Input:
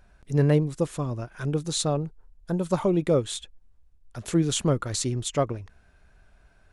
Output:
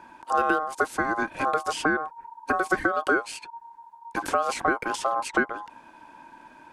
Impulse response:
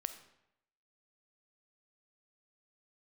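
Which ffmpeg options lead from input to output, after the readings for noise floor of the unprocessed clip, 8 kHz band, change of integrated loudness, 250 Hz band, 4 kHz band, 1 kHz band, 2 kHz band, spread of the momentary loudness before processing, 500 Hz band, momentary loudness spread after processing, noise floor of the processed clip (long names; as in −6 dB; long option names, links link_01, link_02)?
−59 dBFS, −7.0 dB, 0.0 dB, −5.0 dB, −5.0 dB, +12.0 dB, +17.0 dB, 12 LU, −2.5 dB, 14 LU, −52 dBFS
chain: -filter_complex "[0:a]equalizer=frequency=630:width_type=o:width=0.5:gain=13.5,aeval=exprs='val(0)*sin(2*PI*930*n/s)':channel_layout=same,acrossover=split=840|2400[link_01][link_02][link_03];[link_01]acompressor=threshold=-36dB:ratio=4[link_04];[link_02]acompressor=threshold=-37dB:ratio=4[link_05];[link_03]acompressor=threshold=-48dB:ratio=4[link_06];[link_04][link_05][link_06]amix=inputs=3:normalize=0,volume=9dB"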